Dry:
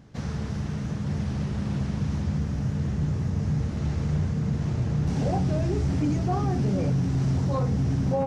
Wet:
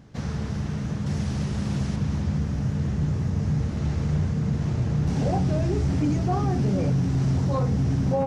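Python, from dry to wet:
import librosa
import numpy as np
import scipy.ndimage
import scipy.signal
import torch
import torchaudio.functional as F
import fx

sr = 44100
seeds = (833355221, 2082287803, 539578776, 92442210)

y = fx.high_shelf(x, sr, hz=4500.0, db=8.5, at=(1.06, 1.96))
y = F.gain(torch.from_numpy(y), 1.5).numpy()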